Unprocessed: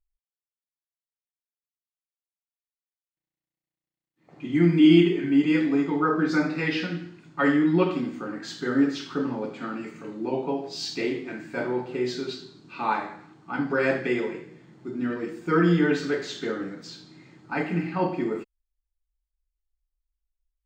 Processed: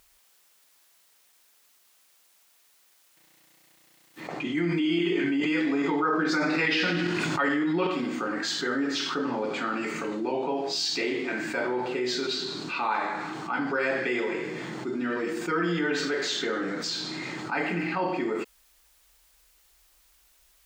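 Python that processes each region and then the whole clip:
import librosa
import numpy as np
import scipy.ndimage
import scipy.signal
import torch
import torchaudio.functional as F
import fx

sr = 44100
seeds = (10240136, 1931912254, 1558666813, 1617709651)

y = fx.chain(x, sr, fx.tremolo_shape(shape='saw_up', hz=2.4, depth_pct=45),
    fx.env_flatten(amount_pct=70), at=(4.57, 7.87))
y = fx.highpass(y, sr, hz=560.0, slope=6)
y = fx.env_flatten(y, sr, amount_pct=70)
y = y * librosa.db_to_amplitude(-6.0)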